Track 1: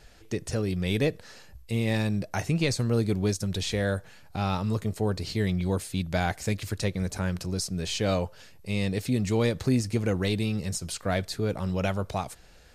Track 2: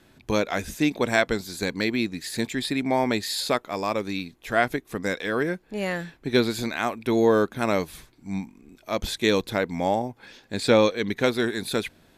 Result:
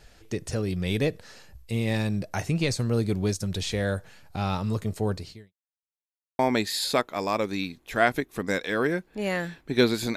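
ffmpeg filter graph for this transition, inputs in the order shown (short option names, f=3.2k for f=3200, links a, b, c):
-filter_complex "[0:a]apad=whole_dur=10.16,atrim=end=10.16,asplit=2[a][b];[a]atrim=end=5.53,asetpts=PTS-STARTPTS,afade=t=out:st=5.12:d=0.41:c=qua[c];[b]atrim=start=5.53:end=6.39,asetpts=PTS-STARTPTS,volume=0[d];[1:a]atrim=start=2.95:end=6.72,asetpts=PTS-STARTPTS,afade=t=in:d=0.004:c=hsin[e];[c][d][e]concat=n=3:v=0:a=1"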